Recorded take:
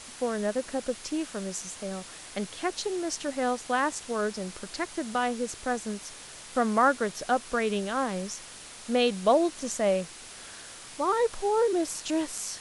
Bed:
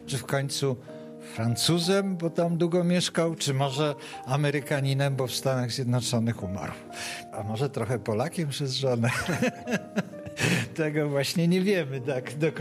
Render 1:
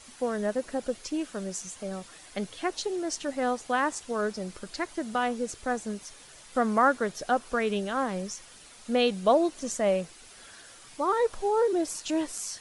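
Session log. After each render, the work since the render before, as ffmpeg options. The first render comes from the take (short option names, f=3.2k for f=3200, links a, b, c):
-af "afftdn=nr=8:nf=-45"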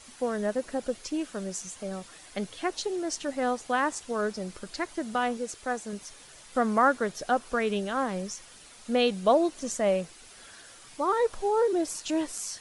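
-filter_complex "[0:a]asettb=1/sr,asplit=3[a][b][c];[a]atrim=end=5.374[d];[b]atrim=start=5.37:end=5.93,asetpts=PTS-STARTPTS,afade=t=in:d=0.004:c=qsin,afade=t=out:st=0.556:d=0.004:c=qsin,lowshelf=f=250:g=-8[e];[c]atrim=start=5.926[f];[d][e]acrossfade=d=0.004:c1=hsin:c2=qsin[g];[g][f]acrossfade=d=0.004:c1=qsin:c2=hsin"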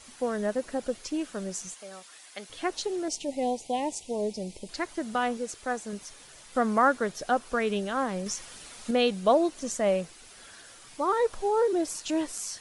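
-filter_complex "[0:a]asettb=1/sr,asplit=3[a][b][c];[a]atrim=end=1.744[d];[b]atrim=start=1.74:end=2.5,asetpts=PTS-STARTPTS,afade=t=in:d=0.004:c=qsin,afade=t=out:st=0.756:d=0.004:c=qsin,highpass=f=1.2k:p=1[e];[c]atrim=start=2.496[f];[d][e]acrossfade=d=0.004:c1=hsin:c2=qsin[g];[g][f]acrossfade=d=0.004:c1=qsin:c2=hsin,asettb=1/sr,asplit=3[h][i][j];[h]atrim=end=3.084[k];[i]atrim=start=3.08:end=4.69,asetpts=PTS-STARTPTS,afade=t=in:d=0.004:c=qsin,afade=t=out:st=1.606:d=0.004:c=qsin,asuperstop=centerf=1400:order=8:qfactor=1.1[l];[j]atrim=start=4.686[m];[k][l]acrossfade=d=0.004:c1=hsin:c2=qsin[n];[n][m]acrossfade=d=0.004:c1=qsin:c2=hsin,asettb=1/sr,asplit=3[o][p][q];[o]atrim=end=8.264[r];[p]atrim=start=8.26:end=8.91,asetpts=PTS-STARTPTS,afade=t=in:d=0.004:c=qsin,afade=t=out:st=0.646:d=0.004:c=qsin,acontrast=24[s];[q]atrim=start=8.906[t];[r][s]acrossfade=d=0.004:c1=hsin:c2=qsin[u];[u][t]acrossfade=d=0.004:c1=qsin:c2=hsin"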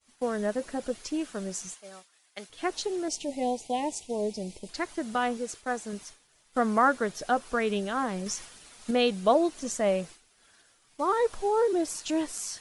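-af "bandreject=f=540:w=17,agate=range=-33dB:threshold=-40dB:ratio=3:detection=peak"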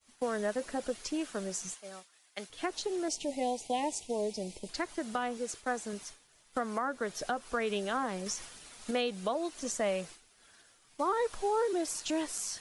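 -filter_complex "[0:a]acrossover=split=340|990[a][b][c];[a]acompressor=threshold=-41dB:ratio=4[d];[b]acompressor=threshold=-32dB:ratio=4[e];[c]acompressor=threshold=-33dB:ratio=4[f];[d][e][f]amix=inputs=3:normalize=0,alimiter=limit=-21dB:level=0:latency=1:release=431"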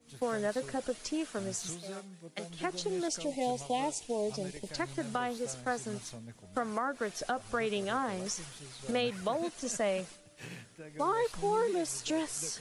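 -filter_complex "[1:a]volume=-21.5dB[a];[0:a][a]amix=inputs=2:normalize=0"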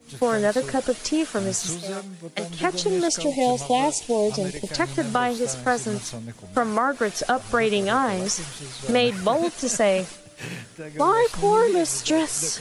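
-af "volume=11.5dB"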